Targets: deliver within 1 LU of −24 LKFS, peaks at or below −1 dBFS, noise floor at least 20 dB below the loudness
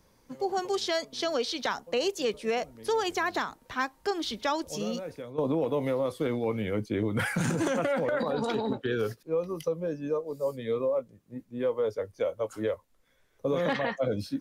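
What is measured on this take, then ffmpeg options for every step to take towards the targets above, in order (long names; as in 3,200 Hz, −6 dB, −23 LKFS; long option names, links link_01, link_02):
integrated loudness −30.5 LKFS; sample peak −16.0 dBFS; target loudness −24.0 LKFS
→ -af "volume=6.5dB"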